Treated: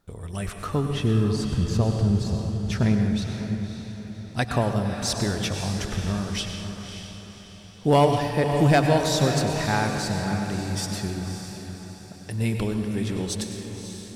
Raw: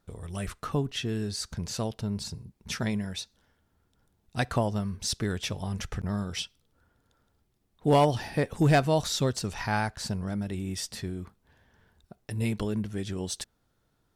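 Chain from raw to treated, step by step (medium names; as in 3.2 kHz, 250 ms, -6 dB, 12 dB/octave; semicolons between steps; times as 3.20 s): 0.90–3.22 s: tilt EQ -2.5 dB/octave; echo that smears into a reverb 571 ms, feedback 45%, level -8 dB; plate-style reverb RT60 1.4 s, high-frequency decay 0.8×, pre-delay 85 ms, DRR 5.5 dB; trim +3 dB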